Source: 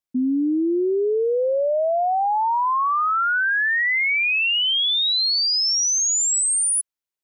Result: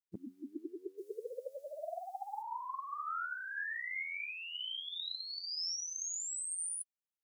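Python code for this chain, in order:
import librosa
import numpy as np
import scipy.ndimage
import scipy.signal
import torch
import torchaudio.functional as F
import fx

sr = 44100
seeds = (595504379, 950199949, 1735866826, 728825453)

y = fx.vibrato(x, sr, rate_hz=1.6, depth_cents=28.0)
y = fx.spec_gate(y, sr, threshold_db=-15, keep='weak')
y = fx.bass_treble(y, sr, bass_db=-2, treble_db=11, at=(0.97, 2.41), fade=0.02)
y = y * librosa.db_to_amplitude(8.0)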